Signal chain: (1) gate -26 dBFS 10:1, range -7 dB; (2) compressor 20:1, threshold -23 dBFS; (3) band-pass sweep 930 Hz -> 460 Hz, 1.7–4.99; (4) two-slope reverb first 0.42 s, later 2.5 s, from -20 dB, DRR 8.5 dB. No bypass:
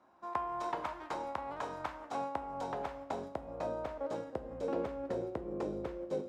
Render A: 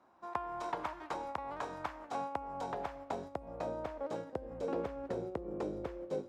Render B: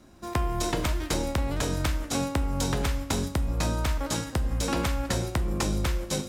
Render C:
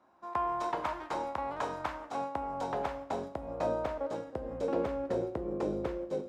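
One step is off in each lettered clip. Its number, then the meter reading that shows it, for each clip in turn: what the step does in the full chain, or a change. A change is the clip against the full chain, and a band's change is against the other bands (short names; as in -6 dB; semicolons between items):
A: 4, loudness change -1.0 LU; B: 3, 8 kHz band +15.0 dB; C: 2, mean gain reduction 4.0 dB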